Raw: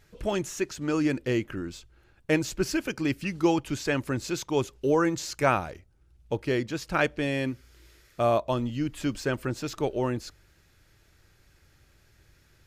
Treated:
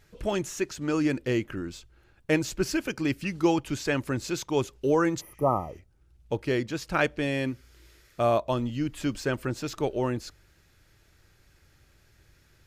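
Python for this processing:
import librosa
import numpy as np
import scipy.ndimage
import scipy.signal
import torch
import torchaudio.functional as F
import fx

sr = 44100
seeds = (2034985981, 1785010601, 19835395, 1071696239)

y = fx.spec_repair(x, sr, seeds[0], start_s=5.23, length_s=0.51, low_hz=1300.0, high_hz=9700.0, source='after')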